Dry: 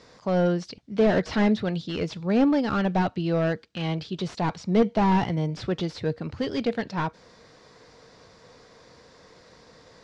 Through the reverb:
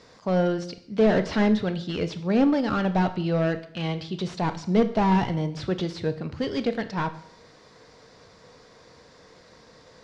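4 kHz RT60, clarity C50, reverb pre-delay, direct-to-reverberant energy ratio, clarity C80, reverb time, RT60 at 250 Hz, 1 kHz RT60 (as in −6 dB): 0.55 s, 14.0 dB, 21 ms, 11.0 dB, 16.5 dB, 0.60 s, 0.60 s, 0.60 s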